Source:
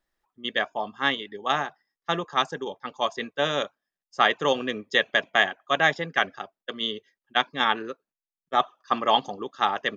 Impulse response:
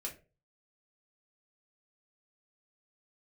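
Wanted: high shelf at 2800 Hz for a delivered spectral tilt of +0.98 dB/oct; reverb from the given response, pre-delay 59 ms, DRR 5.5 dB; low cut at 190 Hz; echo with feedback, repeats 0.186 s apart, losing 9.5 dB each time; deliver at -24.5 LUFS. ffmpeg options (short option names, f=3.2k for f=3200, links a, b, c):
-filter_complex "[0:a]highpass=190,highshelf=f=2.8k:g=4,aecho=1:1:186|372|558|744:0.335|0.111|0.0365|0.012,asplit=2[a][b];[1:a]atrim=start_sample=2205,adelay=59[c];[b][c]afir=irnorm=-1:irlink=0,volume=-4.5dB[d];[a][d]amix=inputs=2:normalize=0,volume=-1dB"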